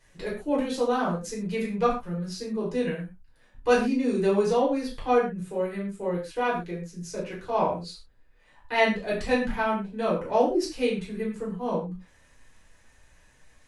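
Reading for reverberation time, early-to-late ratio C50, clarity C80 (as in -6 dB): no single decay rate, 6.5 dB, 10.5 dB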